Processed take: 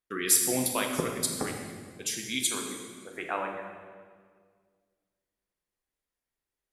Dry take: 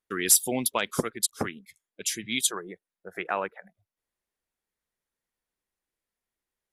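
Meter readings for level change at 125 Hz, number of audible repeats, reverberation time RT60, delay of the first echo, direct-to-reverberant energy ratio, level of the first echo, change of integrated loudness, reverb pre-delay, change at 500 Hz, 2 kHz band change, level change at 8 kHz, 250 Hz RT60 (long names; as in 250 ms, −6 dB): 0.0 dB, no echo audible, 1.8 s, no echo audible, 1.5 dB, no echo audible, −2.5 dB, 8 ms, −1.0 dB, −2.0 dB, −2.0 dB, 2.1 s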